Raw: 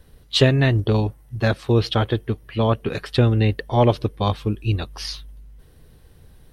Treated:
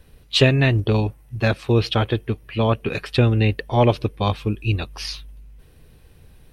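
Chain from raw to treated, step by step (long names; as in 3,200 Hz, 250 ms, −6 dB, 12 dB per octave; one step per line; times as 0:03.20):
parametric band 2,500 Hz +8 dB 0.28 octaves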